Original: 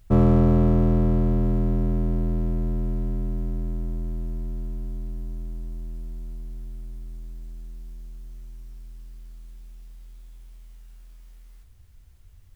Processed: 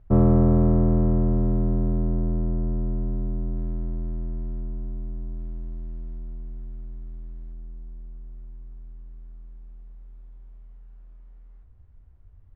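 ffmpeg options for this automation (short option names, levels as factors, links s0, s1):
-af "asetnsamples=n=441:p=0,asendcmd='3.56 lowpass f 1700;4.61 lowpass f 1400;5.39 lowpass f 1800;6.17 lowpass f 1500;7.53 lowpass f 1100',lowpass=1200"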